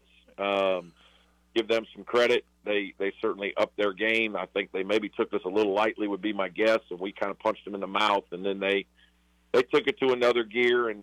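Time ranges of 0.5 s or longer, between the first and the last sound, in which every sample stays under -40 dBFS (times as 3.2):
0.86–1.56
8.82–9.54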